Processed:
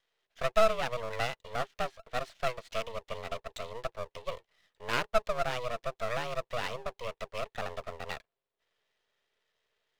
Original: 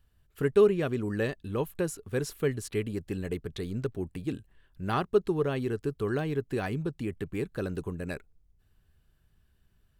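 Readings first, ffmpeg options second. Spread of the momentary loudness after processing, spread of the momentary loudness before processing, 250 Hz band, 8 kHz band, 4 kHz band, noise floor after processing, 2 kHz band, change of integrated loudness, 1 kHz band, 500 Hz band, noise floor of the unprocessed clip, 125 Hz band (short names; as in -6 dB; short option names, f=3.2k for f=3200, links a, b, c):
12 LU, 10 LU, -16.5 dB, -3.5 dB, +6.0 dB, under -85 dBFS, +2.0 dB, -4.0 dB, +5.0 dB, -5.0 dB, -68 dBFS, -12.0 dB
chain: -af "highpass=f=210:t=q:w=0.5412,highpass=f=210:t=q:w=1.307,lowpass=f=3.6k:t=q:w=0.5176,lowpass=f=3.6k:t=q:w=0.7071,lowpass=f=3.6k:t=q:w=1.932,afreqshift=240,aeval=exprs='max(val(0),0)':c=same,highshelf=f=2.2k:g=9.5"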